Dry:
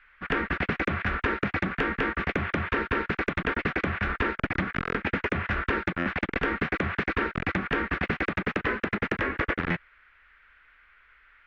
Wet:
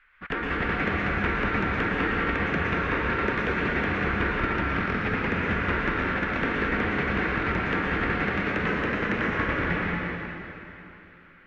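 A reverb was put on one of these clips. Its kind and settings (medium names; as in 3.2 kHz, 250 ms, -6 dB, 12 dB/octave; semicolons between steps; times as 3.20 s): plate-style reverb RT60 3.1 s, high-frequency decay 0.9×, pre-delay 100 ms, DRR -4.5 dB; trim -3.5 dB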